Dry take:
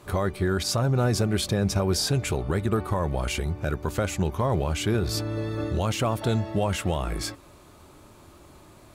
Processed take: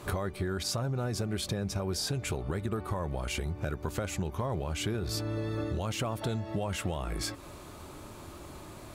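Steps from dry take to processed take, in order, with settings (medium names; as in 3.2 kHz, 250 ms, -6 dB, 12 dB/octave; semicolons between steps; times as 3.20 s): compression 6:1, threshold -35 dBFS, peak gain reduction 15 dB; trim +4.5 dB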